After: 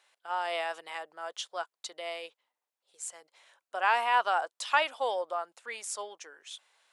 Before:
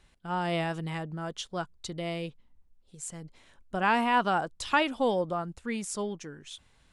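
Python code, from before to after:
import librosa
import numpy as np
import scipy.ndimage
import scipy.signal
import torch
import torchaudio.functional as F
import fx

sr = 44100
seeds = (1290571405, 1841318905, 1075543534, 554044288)

y = scipy.signal.sosfilt(scipy.signal.butter(4, 560.0, 'highpass', fs=sr, output='sos'), x)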